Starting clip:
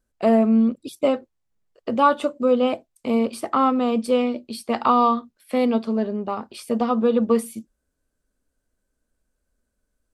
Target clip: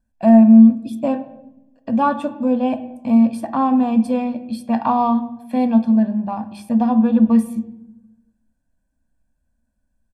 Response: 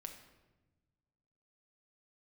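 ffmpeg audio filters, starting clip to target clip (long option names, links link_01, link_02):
-filter_complex "[0:a]aecho=1:1:1.2:0.99,asplit=2[link_01][link_02];[link_02]equalizer=frequency=180:width=0.37:gain=10.5[link_03];[1:a]atrim=start_sample=2205,asetrate=61740,aresample=44100,lowpass=2900[link_04];[link_03][link_04]afir=irnorm=-1:irlink=0,volume=5.5dB[link_05];[link_01][link_05]amix=inputs=2:normalize=0,volume=-8dB"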